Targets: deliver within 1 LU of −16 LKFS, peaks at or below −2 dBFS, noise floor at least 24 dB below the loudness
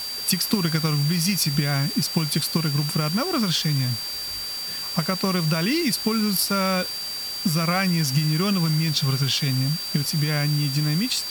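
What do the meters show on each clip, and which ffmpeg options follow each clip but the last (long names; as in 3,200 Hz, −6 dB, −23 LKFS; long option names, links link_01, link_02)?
interfering tone 4,700 Hz; level of the tone −29 dBFS; background noise floor −31 dBFS; target noise floor −47 dBFS; integrated loudness −22.5 LKFS; sample peak −7.5 dBFS; target loudness −16.0 LKFS
→ -af "bandreject=frequency=4700:width=30"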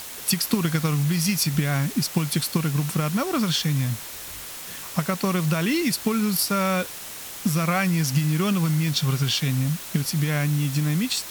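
interfering tone none found; background noise floor −37 dBFS; target noise floor −48 dBFS
→ -af "afftdn=noise_reduction=11:noise_floor=-37"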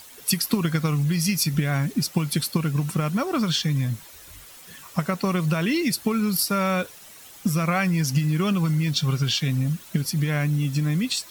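background noise floor −46 dBFS; target noise floor −48 dBFS
→ -af "afftdn=noise_reduction=6:noise_floor=-46"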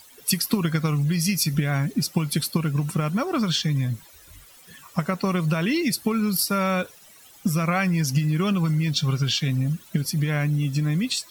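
background noise floor −50 dBFS; integrated loudness −24.0 LKFS; sample peak −8.5 dBFS; target loudness −16.0 LKFS
→ -af "volume=8dB,alimiter=limit=-2dB:level=0:latency=1"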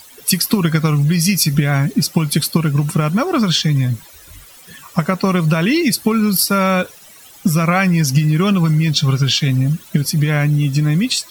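integrated loudness −16.0 LKFS; sample peak −2.0 dBFS; background noise floor −42 dBFS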